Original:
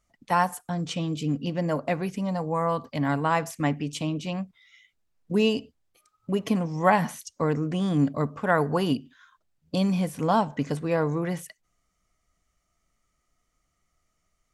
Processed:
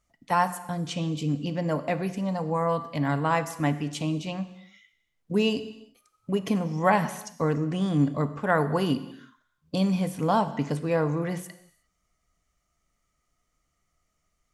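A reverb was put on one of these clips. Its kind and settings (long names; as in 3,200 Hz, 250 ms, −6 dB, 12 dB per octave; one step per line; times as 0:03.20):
reverb whose tail is shaped and stops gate 380 ms falling, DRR 11 dB
level −1 dB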